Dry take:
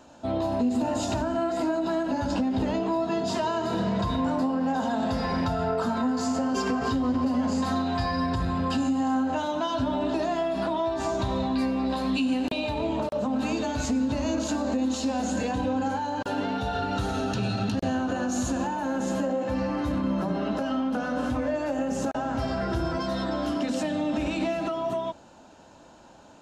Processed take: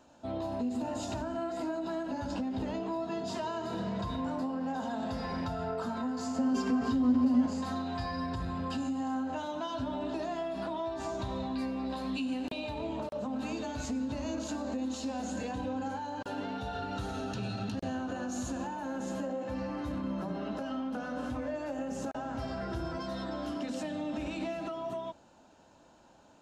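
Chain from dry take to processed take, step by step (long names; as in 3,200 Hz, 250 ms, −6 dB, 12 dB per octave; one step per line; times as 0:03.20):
0:06.38–0:07.46: parametric band 240 Hz +11 dB 0.34 octaves
level −8.5 dB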